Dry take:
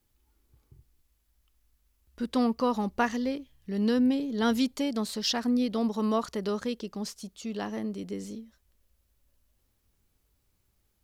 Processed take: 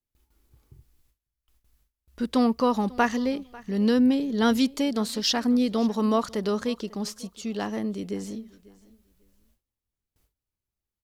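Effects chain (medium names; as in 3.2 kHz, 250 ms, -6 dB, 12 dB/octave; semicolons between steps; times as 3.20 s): feedback delay 545 ms, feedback 21%, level -22 dB; gate with hold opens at -59 dBFS; trim +4 dB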